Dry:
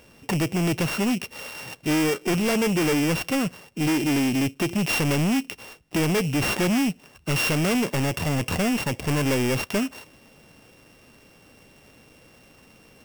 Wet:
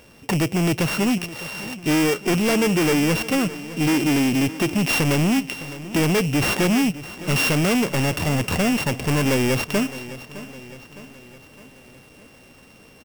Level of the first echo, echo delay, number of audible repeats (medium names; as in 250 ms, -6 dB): -16.0 dB, 611 ms, 4